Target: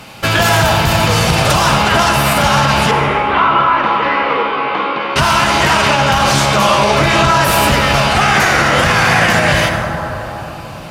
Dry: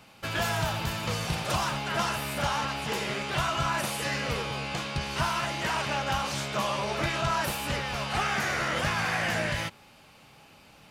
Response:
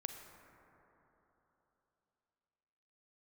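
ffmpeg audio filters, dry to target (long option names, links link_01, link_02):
-filter_complex "[0:a]asettb=1/sr,asplit=3[link_01][link_02][link_03];[link_01]atrim=end=2.914[link_04];[link_02]atrim=start=2.91:end=5.16,asetpts=PTS-STARTPTS,afade=type=in:duration=0.004:curve=qsin,afade=type=out:start_time=2.246:duration=0.004:curve=qsin,highpass=frequency=280:width=0.5412,highpass=frequency=280:width=1.3066,equalizer=frequency=390:width_type=q:width=4:gain=-5,equalizer=frequency=650:width_type=q:width=4:gain=-9,equalizer=frequency=1100:width_type=q:width=4:gain=4,equalizer=frequency=1700:width_type=q:width=4:gain=-7,equalizer=frequency=2600:width_type=q:width=4:gain=-5,lowpass=frequency=2600:width=0.5412,lowpass=frequency=2600:width=1.3066[link_05];[link_03]atrim=start=5.156[link_06];[link_04][link_05]acrossfade=duration=0.004:curve1=hsin:curve2=qsin[link_07];[link_07][link_06]acrossfade=duration=0.004:curve1=qsin:curve2=hsin[link_08];[1:a]atrim=start_sample=2205,asetrate=36162,aresample=44100[link_09];[link_08][link_09]afir=irnorm=-1:irlink=0,alimiter=level_in=22dB:limit=-1dB:release=50:level=0:latency=1,volume=-1dB"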